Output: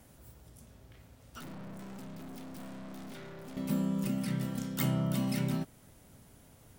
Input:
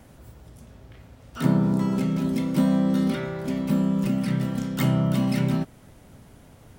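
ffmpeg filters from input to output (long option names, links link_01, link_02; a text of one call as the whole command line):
ffmpeg -i in.wav -filter_complex "[0:a]aemphasis=mode=production:type=cd,asettb=1/sr,asplit=3[link_01][link_02][link_03];[link_01]atrim=end=1.394[link_04];[link_02]atrim=start=1.39:end=3.57,asetpts=PTS-STARTPTS,afade=type=in:duration=0.004:curve=qsin,afade=type=out:start_time=2.176:duration=0.004:curve=qsin,aeval=exprs='(tanh(63.1*val(0)+0.55)-tanh(0.55))/63.1':channel_layout=same[link_05];[link_03]atrim=start=3.566[link_06];[link_04][link_05]acrossfade=duration=0.004:curve1=hsin:curve2=qsin[link_07];[link_07][link_06]acrossfade=duration=0.004:curve1=qsin:curve2=hsin,volume=-8.5dB" out.wav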